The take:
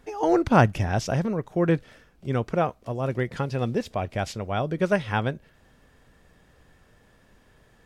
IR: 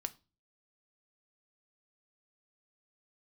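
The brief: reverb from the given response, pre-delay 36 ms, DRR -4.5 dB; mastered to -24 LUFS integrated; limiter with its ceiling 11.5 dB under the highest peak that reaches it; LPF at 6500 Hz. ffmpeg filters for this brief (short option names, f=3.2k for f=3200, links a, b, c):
-filter_complex "[0:a]lowpass=6.5k,alimiter=limit=-15.5dB:level=0:latency=1,asplit=2[a][b];[1:a]atrim=start_sample=2205,adelay=36[c];[b][c]afir=irnorm=-1:irlink=0,volume=6dB[d];[a][d]amix=inputs=2:normalize=0,volume=-1.5dB"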